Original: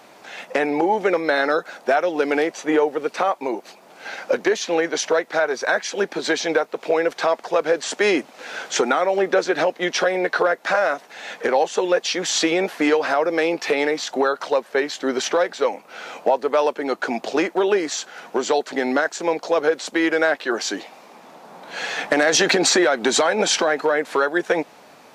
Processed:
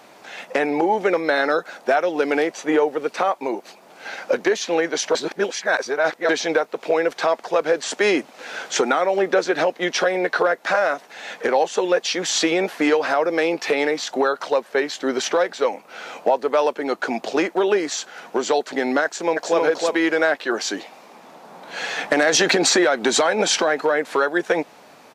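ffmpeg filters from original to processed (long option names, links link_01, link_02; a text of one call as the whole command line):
ffmpeg -i in.wav -filter_complex "[0:a]asplit=2[link_01][link_02];[link_02]afade=type=in:start_time=19.04:duration=0.01,afade=type=out:start_time=19.59:duration=0.01,aecho=0:1:320|640|960:0.749894|0.112484|0.0168726[link_03];[link_01][link_03]amix=inputs=2:normalize=0,asplit=3[link_04][link_05][link_06];[link_04]atrim=end=5.152[link_07];[link_05]atrim=start=5.148:end=6.292,asetpts=PTS-STARTPTS,areverse[link_08];[link_06]atrim=start=6.288[link_09];[link_07][link_08]acrossfade=duration=0.004:curve1=hsin:curve2=hsin[link_10];[link_10][link_09]acrossfade=duration=0.004:curve1=hsin:curve2=hsin" out.wav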